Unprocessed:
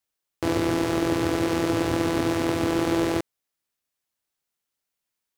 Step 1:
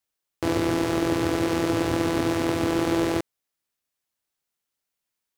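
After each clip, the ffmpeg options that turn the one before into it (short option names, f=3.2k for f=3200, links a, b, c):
-af anull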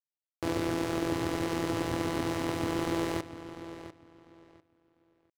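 -filter_complex "[0:a]aeval=exprs='sgn(val(0))*max(abs(val(0))-0.01,0)':c=same,asplit=2[a][b];[b]adelay=697,lowpass=f=5k:p=1,volume=-12.5dB,asplit=2[c][d];[d]adelay=697,lowpass=f=5k:p=1,volume=0.22,asplit=2[e][f];[f]adelay=697,lowpass=f=5k:p=1,volume=0.22[g];[a][c][e][g]amix=inputs=4:normalize=0,volume=-6dB"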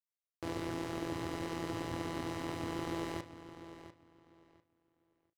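-filter_complex "[0:a]acrossover=split=6500[a][b];[a]asplit=2[c][d];[d]adelay=35,volume=-11dB[e];[c][e]amix=inputs=2:normalize=0[f];[b]asoftclip=type=hard:threshold=-39dB[g];[f][g]amix=inputs=2:normalize=0,volume=-7.5dB"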